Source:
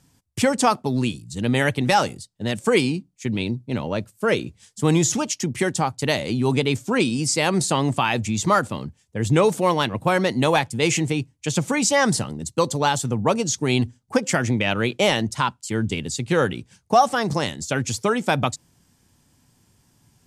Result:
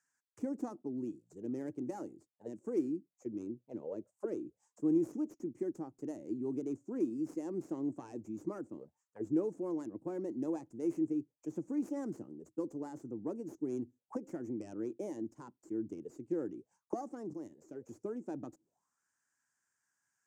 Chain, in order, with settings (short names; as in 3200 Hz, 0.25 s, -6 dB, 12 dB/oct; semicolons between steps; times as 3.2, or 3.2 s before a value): tracing distortion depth 0.26 ms; 17.33–17.89 level quantiser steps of 9 dB; resonant high shelf 5000 Hz +12 dB, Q 3; auto-wah 320–1700 Hz, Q 6.5, down, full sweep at -20 dBFS; gain -5.5 dB